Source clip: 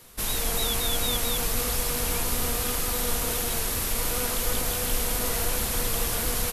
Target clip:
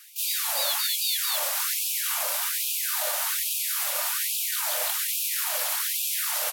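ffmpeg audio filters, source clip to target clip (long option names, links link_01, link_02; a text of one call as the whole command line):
ffmpeg -i in.wav -filter_complex "[0:a]asplit=3[link_01][link_02][link_03];[link_02]asetrate=52444,aresample=44100,atempo=0.840896,volume=-5dB[link_04];[link_03]asetrate=55563,aresample=44100,atempo=0.793701,volume=-1dB[link_05];[link_01][link_04][link_05]amix=inputs=3:normalize=0,acontrast=76,afftfilt=real='re*gte(b*sr/1024,490*pow(2400/490,0.5+0.5*sin(2*PI*1.2*pts/sr)))':imag='im*gte(b*sr/1024,490*pow(2400/490,0.5+0.5*sin(2*PI*1.2*pts/sr)))':win_size=1024:overlap=0.75,volume=-7.5dB" out.wav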